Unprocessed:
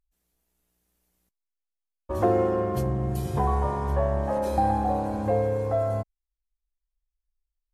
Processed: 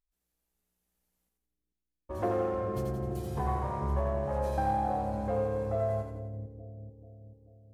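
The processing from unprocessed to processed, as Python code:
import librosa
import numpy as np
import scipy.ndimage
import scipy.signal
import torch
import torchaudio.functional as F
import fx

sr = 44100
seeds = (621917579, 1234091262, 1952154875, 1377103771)

y = fx.self_delay(x, sr, depth_ms=0.12)
y = fx.echo_split(y, sr, split_hz=440.0, low_ms=437, high_ms=86, feedback_pct=52, wet_db=-4)
y = F.gain(torch.from_numpy(y), -8.5).numpy()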